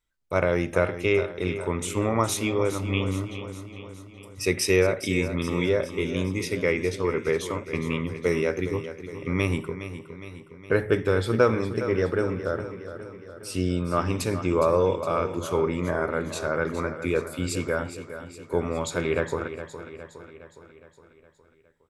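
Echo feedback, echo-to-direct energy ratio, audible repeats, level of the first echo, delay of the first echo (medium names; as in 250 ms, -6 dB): 56%, -10.0 dB, 5, -11.5 dB, 413 ms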